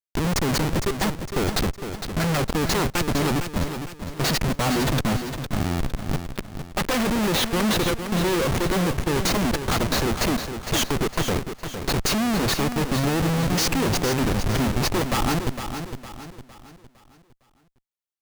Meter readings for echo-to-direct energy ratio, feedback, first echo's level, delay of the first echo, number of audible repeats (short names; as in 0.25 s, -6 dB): -7.5 dB, 41%, -8.5 dB, 0.458 s, 4